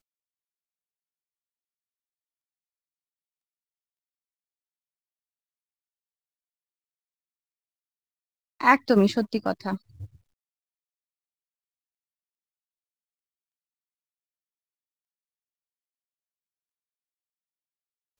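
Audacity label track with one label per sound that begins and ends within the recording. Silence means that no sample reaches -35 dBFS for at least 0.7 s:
8.610000	10.050000	sound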